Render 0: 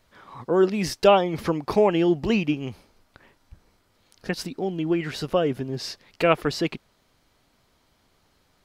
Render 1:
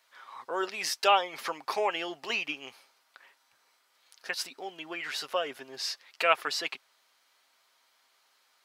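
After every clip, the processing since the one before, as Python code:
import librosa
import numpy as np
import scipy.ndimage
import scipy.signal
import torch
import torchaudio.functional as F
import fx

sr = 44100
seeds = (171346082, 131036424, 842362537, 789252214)

y = scipy.signal.sosfilt(scipy.signal.butter(2, 980.0, 'highpass', fs=sr, output='sos'), x)
y = y + 0.31 * np.pad(y, (int(7.5 * sr / 1000.0), 0))[:len(y)]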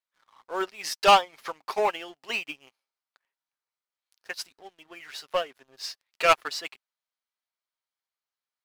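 y = fx.leveller(x, sr, passes=3)
y = fx.upward_expand(y, sr, threshold_db=-27.0, expansion=2.5)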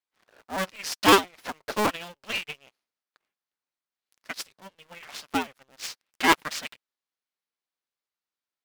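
y = fx.cycle_switch(x, sr, every=2, mode='inverted')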